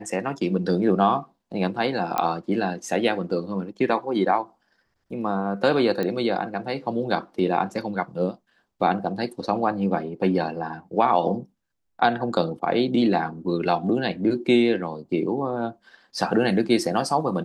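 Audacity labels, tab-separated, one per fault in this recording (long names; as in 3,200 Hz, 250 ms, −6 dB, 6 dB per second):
2.180000	2.180000	click −10 dBFS
6.030000	6.030000	click −15 dBFS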